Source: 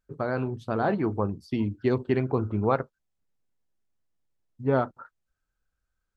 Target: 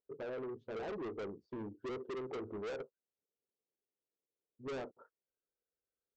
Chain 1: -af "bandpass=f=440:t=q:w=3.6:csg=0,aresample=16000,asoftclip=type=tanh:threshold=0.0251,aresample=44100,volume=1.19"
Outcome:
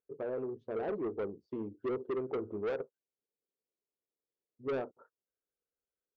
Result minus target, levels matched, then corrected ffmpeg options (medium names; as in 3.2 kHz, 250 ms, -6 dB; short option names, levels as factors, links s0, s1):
saturation: distortion -5 dB
-af "bandpass=f=440:t=q:w=3.6:csg=0,aresample=16000,asoftclip=type=tanh:threshold=0.00944,aresample=44100,volume=1.19"